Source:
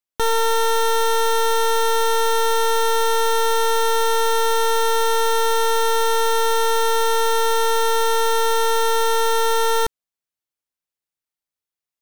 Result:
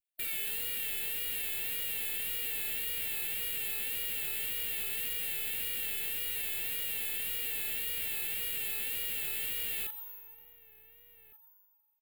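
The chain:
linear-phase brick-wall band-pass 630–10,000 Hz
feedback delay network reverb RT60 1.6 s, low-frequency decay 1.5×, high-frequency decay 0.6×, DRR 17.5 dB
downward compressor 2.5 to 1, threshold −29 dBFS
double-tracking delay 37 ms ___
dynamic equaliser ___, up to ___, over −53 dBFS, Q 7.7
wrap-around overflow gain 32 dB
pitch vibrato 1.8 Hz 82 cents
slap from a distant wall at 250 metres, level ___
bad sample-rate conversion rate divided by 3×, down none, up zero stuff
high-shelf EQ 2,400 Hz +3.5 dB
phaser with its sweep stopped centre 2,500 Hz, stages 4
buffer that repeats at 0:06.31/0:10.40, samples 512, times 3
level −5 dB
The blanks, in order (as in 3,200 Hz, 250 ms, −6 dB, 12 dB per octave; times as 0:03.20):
−11 dB, 6,000 Hz, −4 dB, −14 dB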